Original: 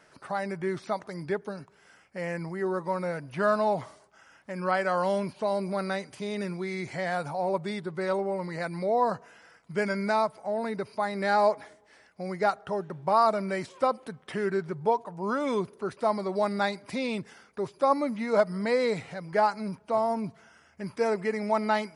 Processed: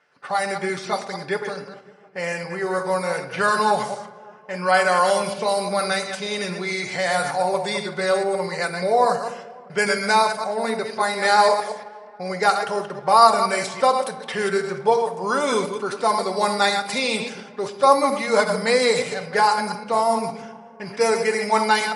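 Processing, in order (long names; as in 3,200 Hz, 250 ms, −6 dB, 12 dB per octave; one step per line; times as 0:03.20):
delay that plays each chunk backwards 116 ms, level −7 dB
noise gate −49 dBFS, range −12 dB
RIAA equalisation recording
notch comb filter 320 Hz
convolution reverb RT60 0.90 s, pre-delay 7 ms, DRR 9 dB
low-pass that shuts in the quiet parts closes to 2,600 Hz, open at −26 dBFS
tape delay 279 ms, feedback 76%, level −22 dB, low-pass 1,700 Hz
level +9 dB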